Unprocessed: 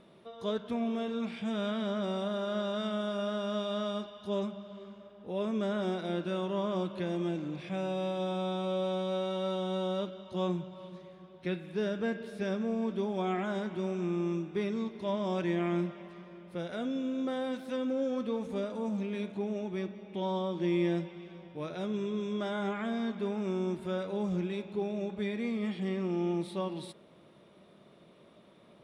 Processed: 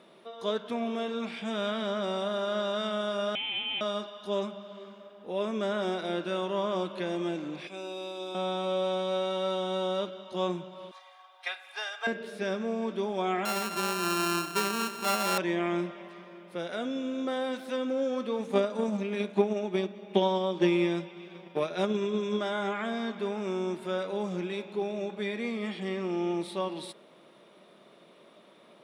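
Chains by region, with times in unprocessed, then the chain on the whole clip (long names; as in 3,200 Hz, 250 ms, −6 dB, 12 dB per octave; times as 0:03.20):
0:03.35–0:03.81: high-pass filter 660 Hz + voice inversion scrambler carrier 3,700 Hz
0:07.67–0:08.35: Butterworth high-pass 250 Hz + parametric band 1,400 Hz −12 dB 2 octaves + comb filter 0.8 ms, depth 49%
0:10.91–0:12.07: Chebyshev high-pass filter 620 Hz, order 5 + comb filter 2.5 ms, depth 82% + transient designer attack +5 dB, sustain 0 dB
0:13.45–0:15.38: samples sorted by size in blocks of 32 samples + single-tap delay 238 ms −12 dB
0:18.38–0:22.39: transient designer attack +12 dB, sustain −2 dB + comb filter 5 ms, depth 41%
whole clip: high-pass filter 200 Hz; low-shelf EQ 370 Hz −6.5 dB; level +5.5 dB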